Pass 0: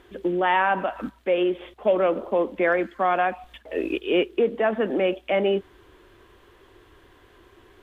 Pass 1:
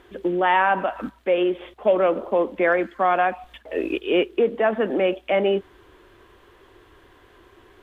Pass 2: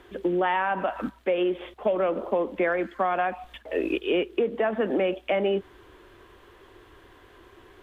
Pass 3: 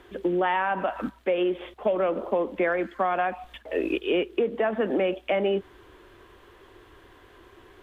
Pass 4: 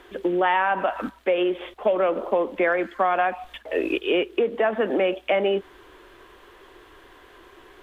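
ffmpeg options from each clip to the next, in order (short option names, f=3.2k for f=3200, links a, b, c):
-af "equalizer=f=950:t=o:w=2.8:g=2.5"
-filter_complex "[0:a]acrossover=split=150[a][b];[b]acompressor=threshold=-21dB:ratio=6[c];[a][c]amix=inputs=2:normalize=0"
-af anull
-af "equalizer=f=100:w=0.5:g=-9.5,volume=4.5dB"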